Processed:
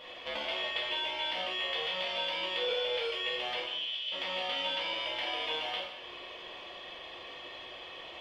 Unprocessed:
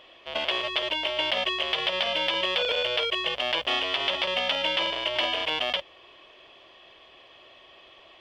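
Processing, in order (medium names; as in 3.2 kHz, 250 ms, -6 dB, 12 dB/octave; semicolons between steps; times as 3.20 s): compression 10:1, threshold -38 dBFS, peak gain reduction 16.5 dB; 3.62–4.12 s: ladder high-pass 2.7 kHz, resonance 60%; two-slope reverb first 0.9 s, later 3.1 s, from -18 dB, DRR -6 dB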